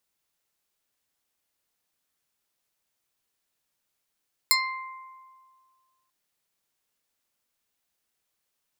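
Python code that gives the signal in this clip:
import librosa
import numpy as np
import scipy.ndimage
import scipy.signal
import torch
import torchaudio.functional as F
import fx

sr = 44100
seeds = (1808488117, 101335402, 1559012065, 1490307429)

y = fx.pluck(sr, length_s=1.59, note=84, decay_s=1.92, pick=0.33, brightness='medium')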